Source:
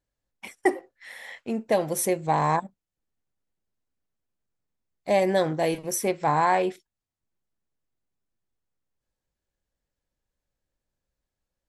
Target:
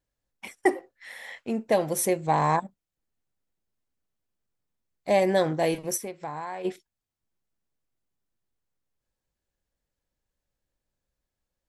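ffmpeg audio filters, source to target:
-filter_complex "[0:a]asplit=3[a][b][c];[a]afade=t=out:st=5.96:d=0.02[d];[b]acompressor=threshold=-35dB:ratio=4,afade=t=in:st=5.96:d=0.02,afade=t=out:st=6.64:d=0.02[e];[c]afade=t=in:st=6.64:d=0.02[f];[d][e][f]amix=inputs=3:normalize=0"

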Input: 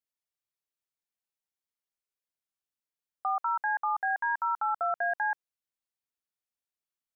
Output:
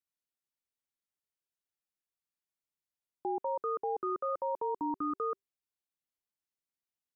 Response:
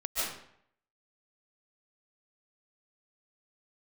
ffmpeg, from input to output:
-af "afreqshift=-400,volume=-4.5dB"

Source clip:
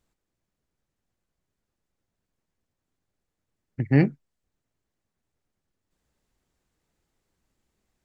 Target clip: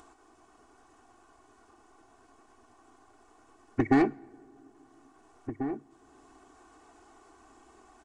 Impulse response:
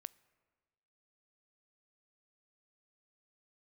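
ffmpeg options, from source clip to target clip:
-filter_complex "[0:a]acrossover=split=1100[a][b];[a]acompressor=threshold=-30dB:ratio=6[c];[b]alimiter=level_in=7dB:limit=-24dB:level=0:latency=1:release=345,volume=-7dB[d];[c][d]amix=inputs=2:normalize=0,asplit=2[e][f];[f]highpass=f=720:p=1,volume=19dB,asoftclip=type=tanh:threshold=-20.5dB[g];[e][g]amix=inputs=2:normalize=0,lowpass=f=1.5k:p=1,volume=-6dB,equalizer=f=125:t=o:w=1:g=-4,equalizer=f=250:t=o:w=1:g=4,equalizer=f=500:t=o:w=1:g=-7,equalizer=f=1k:t=o:w=1:g=5,equalizer=f=2k:t=o:w=1:g=-11,equalizer=f=4k:t=o:w=1:g=-10,asplit=2[h][i];[i]adelay=1691,volume=-10dB,highshelf=f=4k:g=-38[j];[h][j]amix=inputs=2:normalize=0,asplit=2[k][l];[1:a]atrim=start_sample=2205,asetrate=26901,aresample=44100[m];[l][m]afir=irnorm=-1:irlink=0,volume=7dB[n];[k][n]amix=inputs=2:normalize=0,aresample=22050,aresample=44100,lowshelf=f=250:g=-7,aecho=1:1:2.7:0.93,acompressor=mode=upward:threshold=-53dB:ratio=2.5,volume=3dB"

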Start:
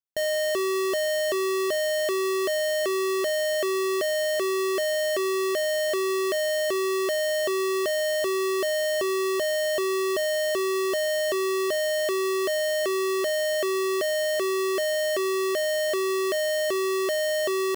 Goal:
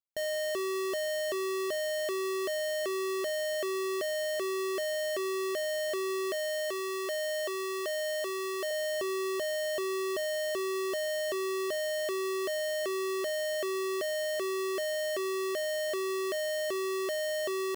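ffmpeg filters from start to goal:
-filter_complex "[0:a]asettb=1/sr,asplit=3[a][b][c];[a]atrim=end=6.334[d];[b]atrim=start=6.33:end=8.71,asetpts=PTS-STARTPTS,afade=t=in:d=0.004:c=qsin,afade=t=out:st=2.376:d=0.004:c=qsin,highpass=380[e];[c]atrim=start=8.706[f];[d][e]acrossfade=d=0.004:c1=hsin:c2=qsin[g];[g][f]acrossfade=d=0.004:c1=qsin:c2=hsin,volume=-7dB"

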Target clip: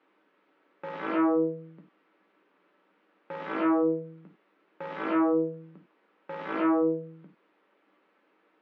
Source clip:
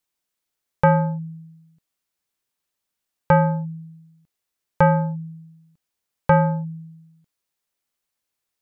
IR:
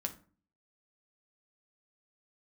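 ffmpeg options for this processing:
-filter_complex "[0:a]aeval=exprs='(tanh(39.8*val(0)+0.45)-tanh(0.45))/39.8':c=same,aeval=exprs='0.0376*sin(PI/2*6.31*val(0)/0.0376)':c=same,asplit=2[a][b];[b]adynamicsmooth=sensitivity=1:basefreq=1.7k,volume=0dB[c];[a][c]amix=inputs=2:normalize=0,highpass=f=240:w=0.5412,highpass=f=240:w=1.3066,equalizer=f=320:t=q:w=4:g=6,equalizer=f=470:t=q:w=4:g=4,equalizer=f=690:t=q:w=4:g=-3,equalizer=f=1.3k:t=q:w=4:g=3,lowpass=f=2.6k:w=0.5412,lowpass=f=2.6k:w=1.3066[d];[1:a]atrim=start_sample=2205,atrim=end_sample=4410[e];[d][e]afir=irnorm=-1:irlink=0"

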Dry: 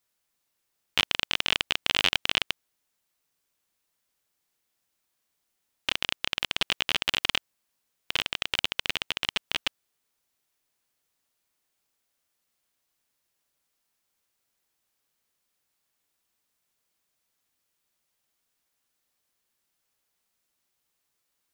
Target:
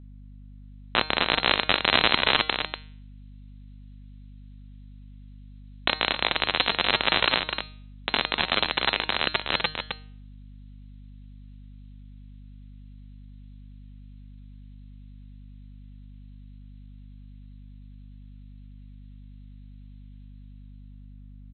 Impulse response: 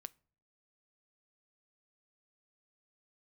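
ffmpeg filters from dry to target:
-filter_complex "[0:a]lowpass=f=2.8k:t=q:w=0.5098,lowpass=f=2.8k:t=q:w=0.6013,lowpass=f=2.8k:t=q:w=0.9,lowpass=f=2.8k:t=q:w=2.563,afreqshift=-3300,equalizer=f=170:t=o:w=0.78:g=3,aecho=1:1:249:0.447,asetrate=55563,aresample=44100,atempo=0.793701,bandreject=f=154.9:t=h:w=4,bandreject=f=309.8:t=h:w=4,bandreject=f=464.7:t=h:w=4,bandreject=f=619.6:t=h:w=4,bandreject=f=774.5:t=h:w=4,bandreject=f=929.4:t=h:w=4,bandreject=f=1.0843k:t=h:w=4,bandreject=f=1.2392k:t=h:w=4,bandreject=f=1.3941k:t=h:w=4,bandreject=f=1.549k:t=h:w=4,bandreject=f=1.7039k:t=h:w=4,bandreject=f=1.8588k:t=h:w=4,bandreject=f=2.0137k:t=h:w=4,bandreject=f=2.1686k:t=h:w=4,bandreject=f=2.3235k:t=h:w=4,bandreject=f=2.4784k:t=h:w=4,bandreject=f=2.6333k:t=h:w=4,bandreject=f=2.7882k:t=h:w=4,bandreject=f=2.9431k:t=h:w=4,bandreject=f=3.098k:t=h:w=4,bandreject=f=3.2529k:t=h:w=4,bandreject=f=3.4078k:t=h:w=4,bandreject=f=3.5627k:t=h:w=4,bandreject=f=3.7176k:t=h:w=4,bandreject=f=3.8725k:t=h:w=4,bandreject=f=4.0274k:t=h:w=4,bandreject=f=4.1823k:t=h:w=4,bandreject=f=4.3372k:t=h:w=4,bandreject=f=4.4921k:t=h:w=4,bandreject=f=4.647k:t=h:w=4,bandreject=f=4.8019k:t=h:w=4,acrossover=split=680|2300[a][b][c];[c]dynaudnorm=f=100:g=21:m=10dB[d];[a][b][d]amix=inputs=3:normalize=0,aeval=exprs='val(0)+0.00398*(sin(2*PI*50*n/s)+sin(2*PI*2*50*n/s)/2+sin(2*PI*3*50*n/s)/3+sin(2*PI*4*50*n/s)/4+sin(2*PI*5*50*n/s)/5)':c=same,volume=4dB"

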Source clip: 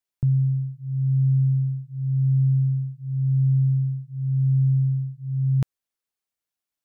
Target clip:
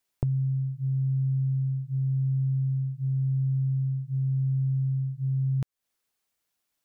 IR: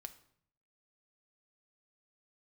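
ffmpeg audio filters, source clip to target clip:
-af "acompressor=threshold=-34dB:ratio=6,volume=8dB"

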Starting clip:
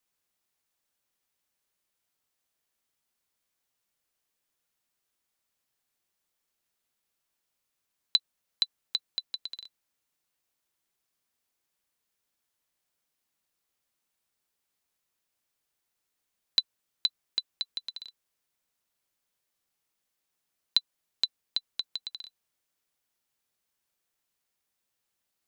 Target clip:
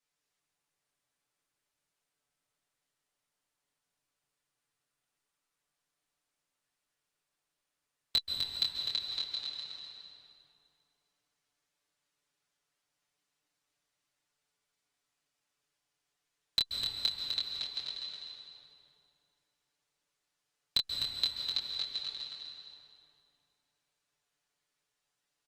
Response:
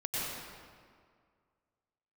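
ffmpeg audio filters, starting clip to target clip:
-filter_complex "[0:a]lowpass=8.4k,lowshelf=f=470:g=-2,aecho=1:1:6.9:0.91,aeval=exprs='clip(val(0),-1,0.178)':c=same,flanger=delay=19.5:depth=7.7:speed=0.27,aecho=1:1:253|506|759|1012:0.531|0.149|0.0416|0.0117,asplit=2[a][b];[1:a]atrim=start_sample=2205,asetrate=30429,aresample=44100[c];[b][c]afir=irnorm=-1:irlink=0,volume=-6.5dB[d];[a][d]amix=inputs=2:normalize=0,volume=-4dB" -ar 48000 -c:a libopus -b:a 48k

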